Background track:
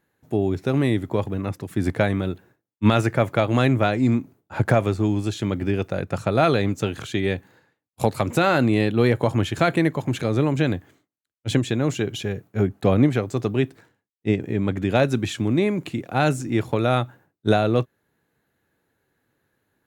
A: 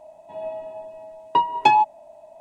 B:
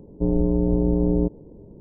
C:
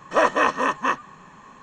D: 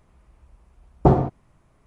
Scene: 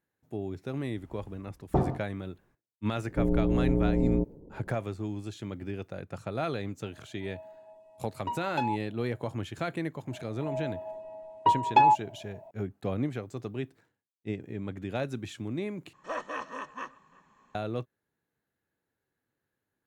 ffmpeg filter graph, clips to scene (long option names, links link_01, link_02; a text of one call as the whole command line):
ffmpeg -i bed.wav -i cue0.wav -i cue1.wav -i cue2.wav -i cue3.wav -filter_complex "[1:a]asplit=2[link_01][link_02];[0:a]volume=-13.5dB[link_03];[4:a]dynaudnorm=framelen=120:gausssize=7:maxgain=15dB[link_04];[link_02]lowpass=frequency=1900:poles=1[link_05];[3:a]asplit=2[link_06][link_07];[link_07]adelay=344,volume=-22dB,highshelf=frequency=4000:gain=-7.74[link_08];[link_06][link_08]amix=inputs=2:normalize=0[link_09];[link_03]asplit=2[link_10][link_11];[link_10]atrim=end=15.934[link_12];[link_09]atrim=end=1.62,asetpts=PTS-STARTPTS,volume=-17dB[link_13];[link_11]atrim=start=17.546[link_14];[link_04]atrim=end=1.86,asetpts=PTS-STARTPTS,volume=-12.5dB,afade=type=in:duration=0.004:curve=hsin,afade=type=out:start_time=1.856:duration=0.004:curve=hsin,adelay=690[link_15];[2:a]atrim=end=1.8,asetpts=PTS-STARTPTS,volume=-5.5dB,afade=type=in:duration=0.004:curve=hsin,afade=type=out:start_time=1.796:duration=0.004:curve=hsin,adelay=2960[link_16];[link_01]atrim=end=2.4,asetpts=PTS-STARTPTS,volume=-16dB,afade=type=in:duration=0.004:curve=hsin,afade=type=out:start_time=2.396:duration=0.004:curve=hsin,adelay=6920[link_17];[link_05]atrim=end=2.4,asetpts=PTS-STARTPTS,volume=-3dB,afade=type=in:duration=0.004:curve=hsin,afade=type=out:start_time=2.396:duration=0.004:curve=hsin,adelay=10110[link_18];[link_12][link_13]acrossfade=duration=0.004:curve1=hsin:curve2=hsin[link_19];[link_19][link_14]acrossfade=duration=0.004:curve1=hsin:curve2=hsin[link_20];[link_20][link_15][link_16][link_17][link_18]amix=inputs=5:normalize=0" out.wav